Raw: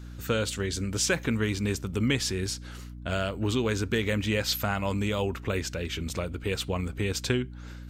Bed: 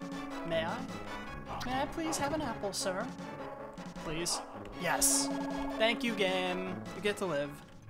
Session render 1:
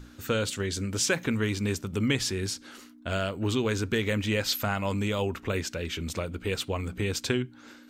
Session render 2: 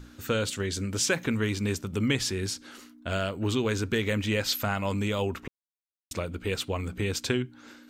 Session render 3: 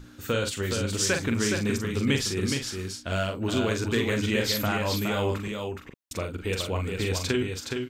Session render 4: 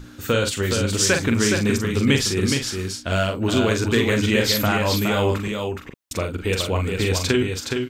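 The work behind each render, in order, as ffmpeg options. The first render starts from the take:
-af "bandreject=f=60:t=h:w=6,bandreject=f=120:t=h:w=6,bandreject=f=180:t=h:w=6"
-filter_complex "[0:a]asplit=3[s0][s1][s2];[s0]atrim=end=5.48,asetpts=PTS-STARTPTS,afade=t=out:st=5.476:d=0.004:c=hsin[s3];[s1]atrim=start=5.48:end=6.11,asetpts=PTS-STARTPTS,volume=0[s4];[s2]atrim=start=6.11,asetpts=PTS-STARTPTS,afade=t=in:d=0.004:c=hsin[s5];[s3][s4][s5]concat=n=3:v=0:a=1"
-filter_complex "[0:a]asplit=2[s0][s1];[s1]adelay=43,volume=0.501[s2];[s0][s2]amix=inputs=2:normalize=0,aecho=1:1:418:0.562"
-af "volume=2.11"

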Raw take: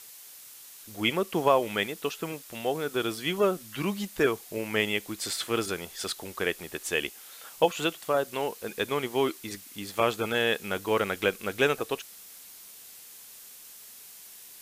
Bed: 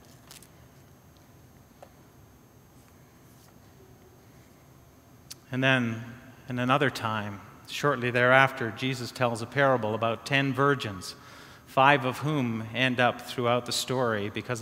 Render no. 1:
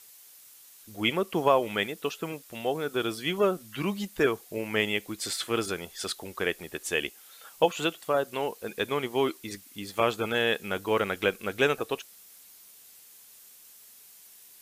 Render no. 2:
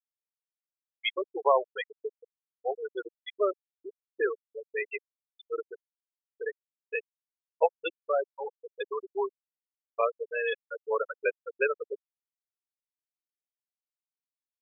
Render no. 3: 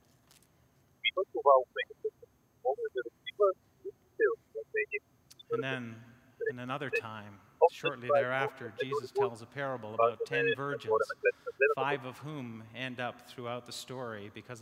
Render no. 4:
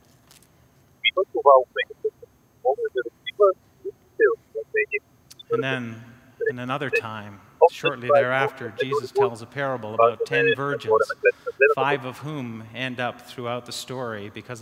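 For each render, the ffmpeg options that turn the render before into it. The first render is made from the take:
-af "afftdn=nr=6:nf=-48"
-af "highpass=f=410:w=0.5412,highpass=f=410:w=1.3066,afftfilt=real='re*gte(hypot(re,im),0.178)':imag='im*gte(hypot(re,im),0.178)':win_size=1024:overlap=0.75"
-filter_complex "[1:a]volume=0.211[s0];[0:a][s0]amix=inputs=2:normalize=0"
-af "volume=3.16,alimiter=limit=0.708:level=0:latency=1"

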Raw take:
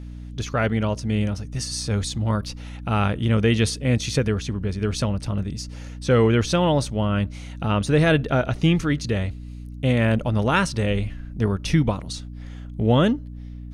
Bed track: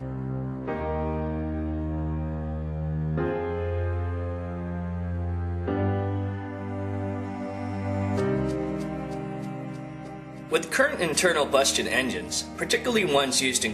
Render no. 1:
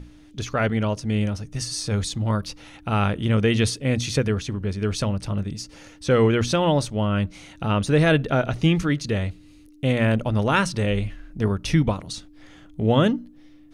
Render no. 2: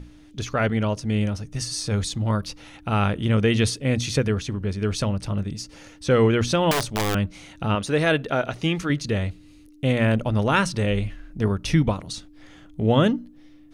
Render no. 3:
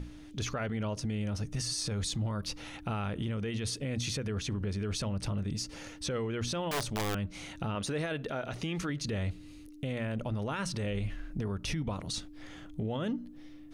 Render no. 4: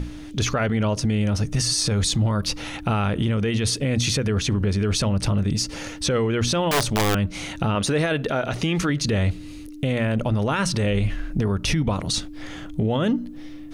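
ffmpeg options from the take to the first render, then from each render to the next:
-af "bandreject=f=60:t=h:w=6,bandreject=f=120:t=h:w=6,bandreject=f=180:t=h:w=6,bandreject=f=240:t=h:w=6"
-filter_complex "[0:a]asettb=1/sr,asplit=3[s0][s1][s2];[s0]atrim=end=6.714[s3];[s1]atrim=start=6.71:end=7.15,asetpts=PTS-STARTPTS,afade=t=in:d=0.004:c=qsin,afade=t=out:st=0.436:d=0.004:c=qsin,aeval=exprs='(mod(6.68*val(0)+1,2)-1)/6.68':c=same[s4];[s2]atrim=start=7.146[s5];[s3][s4]acrossfade=d=0.004:c1=hsin:c2=qsin[s6];[s6][s5]acrossfade=d=0.004:c1=qsin:c2=hsin,asettb=1/sr,asplit=3[s7][s8][s9];[s7]atrim=end=7.754[s10];[s8]atrim=start=7.75:end=8.9,asetpts=PTS-STARTPTS,afade=t=in:d=0.004:c=qsin,afade=t=out:st=1.146:d=0.004:c=qsin,lowshelf=f=190:g=-11.5[s11];[s9]atrim=start=8.896[s12];[s10][s11]acrossfade=d=0.004:c1=hsin:c2=qsin[s13];[s13][s12]acrossfade=d=0.004:c1=qsin:c2=hsin"
-af "acompressor=threshold=0.0501:ratio=6,alimiter=level_in=1.19:limit=0.0631:level=0:latency=1:release=29,volume=0.841"
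-af "volume=3.98"

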